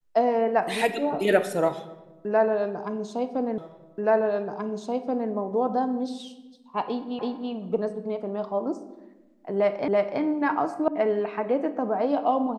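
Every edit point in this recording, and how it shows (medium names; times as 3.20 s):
3.58 s: repeat of the last 1.73 s
7.19 s: repeat of the last 0.33 s
9.88 s: repeat of the last 0.33 s
10.88 s: sound stops dead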